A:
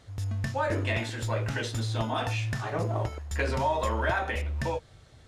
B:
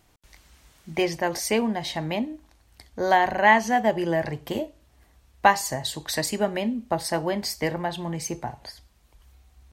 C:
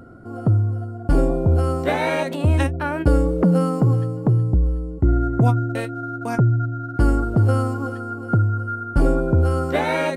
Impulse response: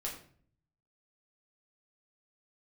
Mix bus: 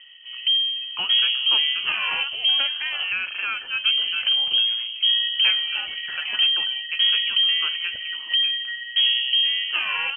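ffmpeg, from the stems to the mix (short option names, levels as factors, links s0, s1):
-filter_complex "[0:a]adelay=2050,volume=0.335[s0];[1:a]alimiter=limit=0.251:level=0:latency=1:release=291,acontrast=79,volume=0.299[s1];[2:a]volume=0.631,asplit=3[s2][s3][s4];[s2]atrim=end=3.03,asetpts=PTS-STARTPTS,afade=t=out:st=3.026:d=0.004:c=hsin[s5];[s3]atrim=start=3.03:end=3.85,asetpts=PTS-STARTPTS,volume=0[s6];[s4]atrim=start=3.85,asetpts=PTS-STARTPTS,afade=t=in:d=0.004:c=hsin[s7];[s5][s6][s7]concat=n=3:v=0:a=1[s8];[s0][s1][s8]amix=inputs=3:normalize=0,lowpass=f=2800:t=q:w=0.5098,lowpass=f=2800:t=q:w=0.6013,lowpass=f=2800:t=q:w=0.9,lowpass=f=2800:t=q:w=2.563,afreqshift=-3300"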